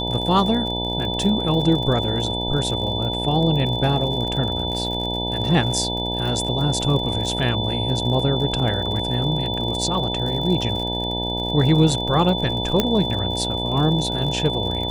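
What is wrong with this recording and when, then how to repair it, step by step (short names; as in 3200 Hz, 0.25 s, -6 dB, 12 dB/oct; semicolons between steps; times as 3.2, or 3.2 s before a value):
buzz 60 Hz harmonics 16 -27 dBFS
crackle 48/s -28 dBFS
tone 3500 Hz -26 dBFS
12.8 pop -4 dBFS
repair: de-click; de-hum 60 Hz, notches 16; notch 3500 Hz, Q 30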